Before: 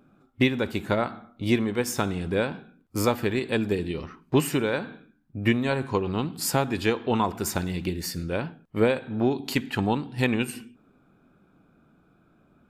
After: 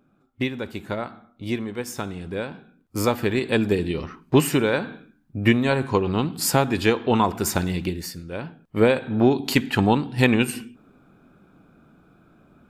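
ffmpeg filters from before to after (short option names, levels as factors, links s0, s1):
-af "volume=7.5,afade=t=in:st=2.45:d=1.12:silence=0.375837,afade=t=out:st=7.72:d=0.52:silence=0.266073,afade=t=in:st=8.24:d=0.82:silence=0.223872"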